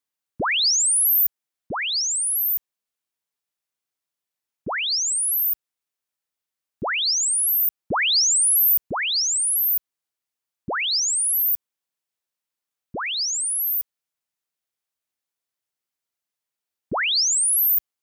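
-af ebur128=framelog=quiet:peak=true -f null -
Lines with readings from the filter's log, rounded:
Integrated loudness:
  I:         -18.9 LUFS
  Threshold: -29.4 LUFS
Loudness range:
  LRA:         8.7 LU
  Threshold: -42.0 LUFS
  LRA low:   -26.8 LUFS
  LRA high:  -18.2 LUFS
True peak:
  Peak:      -12.9 dBFS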